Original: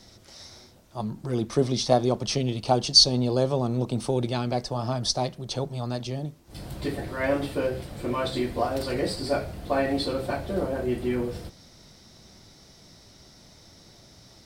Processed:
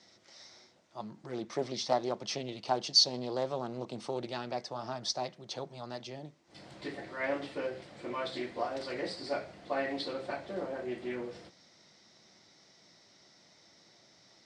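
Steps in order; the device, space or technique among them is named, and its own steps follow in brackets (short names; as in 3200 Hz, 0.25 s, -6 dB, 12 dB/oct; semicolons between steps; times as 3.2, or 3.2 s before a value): full-range speaker at full volume (Doppler distortion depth 0.23 ms; speaker cabinet 230–7200 Hz, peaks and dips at 250 Hz -4 dB, 430 Hz -3 dB, 2000 Hz +5 dB); gain -7.5 dB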